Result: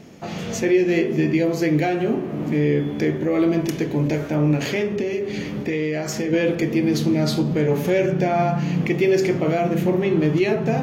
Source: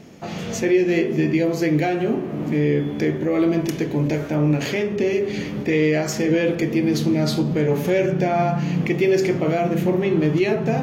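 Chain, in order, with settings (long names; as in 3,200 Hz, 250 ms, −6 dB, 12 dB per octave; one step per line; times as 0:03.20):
0:04.98–0:06.33: downward compressor 3 to 1, threshold −22 dBFS, peak gain reduction 6 dB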